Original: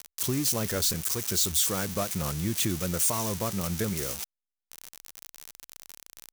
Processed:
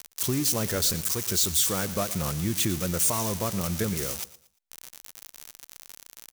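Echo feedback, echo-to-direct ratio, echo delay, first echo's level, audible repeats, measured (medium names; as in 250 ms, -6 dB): 31%, -16.5 dB, 115 ms, -17.0 dB, 2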